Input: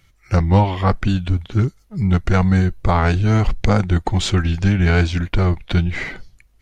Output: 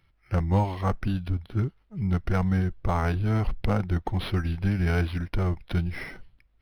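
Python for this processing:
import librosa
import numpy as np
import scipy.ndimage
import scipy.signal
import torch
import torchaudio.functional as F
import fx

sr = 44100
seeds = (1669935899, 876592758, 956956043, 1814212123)

y = np.interp(np.arange(len(x)), np.arange(len(x))[::6], x[::6])
y = y * 10.0 ** (-9.0 / 20.0)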